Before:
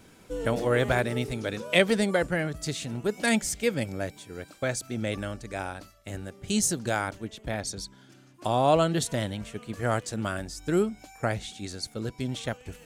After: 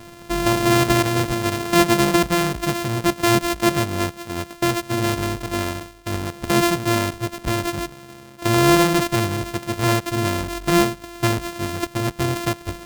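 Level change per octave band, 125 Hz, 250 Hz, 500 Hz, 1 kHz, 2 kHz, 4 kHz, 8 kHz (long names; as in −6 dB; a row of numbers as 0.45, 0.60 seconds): +8.5, +9.5, +5.5, +9.5, +6.5, +9.0, +5.5 decibels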